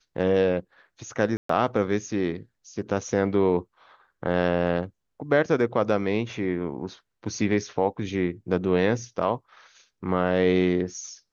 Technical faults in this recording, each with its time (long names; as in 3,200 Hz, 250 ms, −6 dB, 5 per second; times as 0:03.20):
0:01.37–0:01.49: drop-out 124 ms